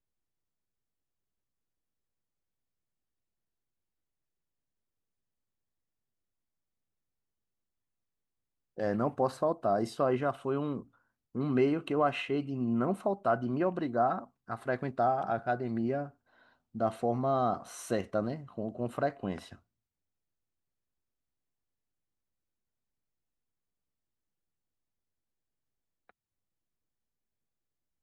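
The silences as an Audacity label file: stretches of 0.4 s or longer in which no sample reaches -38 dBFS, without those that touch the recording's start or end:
10.800000	11.350000	silence
16.060000	16.750000	silence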